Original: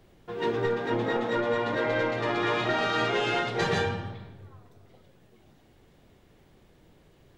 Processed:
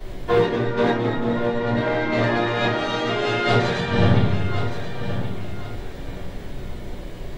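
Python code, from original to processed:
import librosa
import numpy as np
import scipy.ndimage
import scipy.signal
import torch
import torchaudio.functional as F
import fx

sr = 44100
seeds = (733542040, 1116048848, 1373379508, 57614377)

y = fx.low_shelf(x, sr, hz=240.0, db=10.5, at=(1.09, 1.76))
y = fx.over_compress(y, sr, threshold_db=-35.0, ratio=-1.0)
y = fx.echo_feedback(y, sr, ms=1074, feedback_pct=29, wet_db=-10.5)
y = fx.room_shoebox(y, sr, seeds[0], volume_m3=39.0, walls='mixed', distance_m=2.6)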